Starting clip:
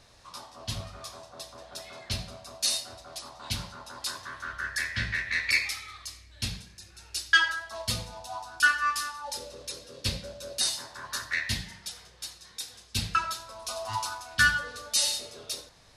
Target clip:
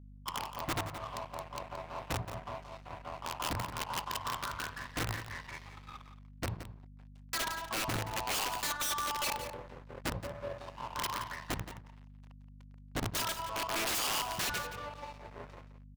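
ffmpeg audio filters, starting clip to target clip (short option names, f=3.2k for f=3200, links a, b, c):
-filter_complex "[0:a]agate=range=-33dB:threshold=-45dB:ratio=3:detection=peak,equalizer=f=110:t=o:w=0.9:g=9,asplit=2[a][b];[b]alimiter=limit=-19dB:level=0:latency=1:release=109,volume=-2dB[c];[a][c]amix=inputs=2:normalize=0,acompressor=threshold=-42dB:ratio=1.5,lowpass=f=980:t=q:w=4.9,aeval=exprs='sgn(val(0))*max(abs(val(0))-0.0075,0)':c=same,aeval=exprs='val(0)+0.00282*(sin(2*PI*50*n/s)+sin(2*PI*2*50*n/s)/2+sin(2*PI*3*50*n/s)/3+sin(2*PI*4*50*n/s)/4+sin(2*PI*5*50*n/s)/5)':c=same,aeval=exprs='(mod(25.1*val(0)+1,2)-1)/25.1':c=same,aecho=1:1:173:0.266"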